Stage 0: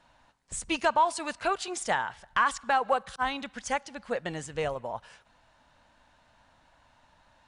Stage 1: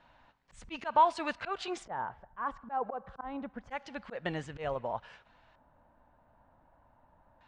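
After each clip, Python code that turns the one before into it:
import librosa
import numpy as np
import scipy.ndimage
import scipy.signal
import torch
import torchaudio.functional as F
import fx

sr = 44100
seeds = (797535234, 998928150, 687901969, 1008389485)

y = fx.filter_lfo_lowpass(x, sr, shape='square', hz=0.27, low_hz=910.0, high_hz=3300.0, q=0.79)
y = fx.auto_swell(y, sr, attack_ms=147.0)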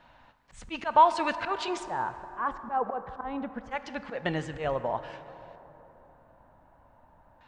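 y = fx.rev_plate(x, sr, seeds[0], rt60_s=3.8, hf_ratio=0.4, predelay_ms=0, drr_db=11.5)
y = y * 10.0 ** (5.0 / 20.0)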